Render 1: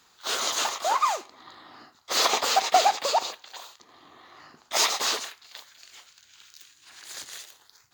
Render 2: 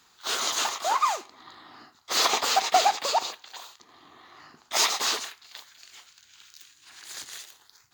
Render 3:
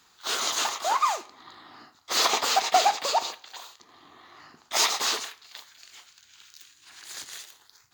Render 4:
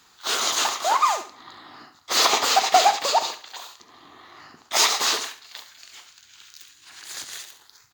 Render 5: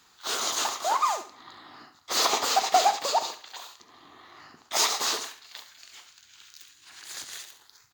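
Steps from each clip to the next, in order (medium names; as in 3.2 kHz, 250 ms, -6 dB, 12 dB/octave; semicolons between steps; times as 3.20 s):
peaking EQ 550 Hz -4.5 dB 0.49 oct
reverberation RT60 0.55 s, pre-delay 5 ms, DRR 16.5 dB
feedback delay 69 ms, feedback 26%, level -12.5 dB; trim +4 dB
dynamic bell 2.4 kHz, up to -4 dB, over -35 dBFS, Q 0.77; trim -3.5 dB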